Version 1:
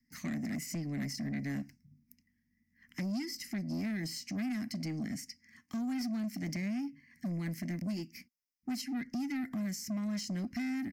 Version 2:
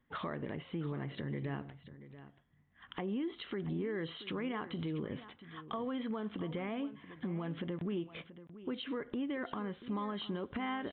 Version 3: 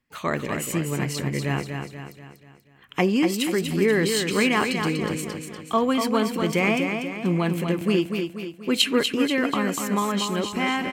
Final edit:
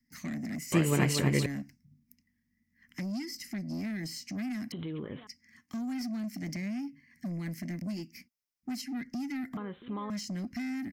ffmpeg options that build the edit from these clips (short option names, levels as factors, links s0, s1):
-filter_complex "[1:a]asplit=2[s0][s1];[0:a]asplit=4[s2][s3][s4][s5];[s2]atrim=end=0.722[s6];[2:a]atrim=start=0.718:end=1.462[s7];[s3]atrim=start=1.458:end=4.722[s8];[s0]atrim=start=4.718:end=5.272[s9];[s4]atrim=start=5.268:end=9.572[s10];[s1]atrim=start=9.568:end=10.102[s11];[s5]atrim=start=10.098[s12];[s6][s7]acrossfade=d=0.004:c1=hsin:c2=hsin[s13];[s13][s8]acrossfade=d=0.004:c1=hsin:c2=hsin[s14];[s14][s9]acrossfade=d=0.004:c1=hsin:c2=hsin[s15];[s15][s10]acrossfade=d=0.004:c1=hsin:c2=hsin[s16];[s16][s11]acrossfade=d=0.004:c1=hsin:c2=hsin[s17];[s17][s12]acrossfade=d=0.004:c1=hsin:c2=hsin"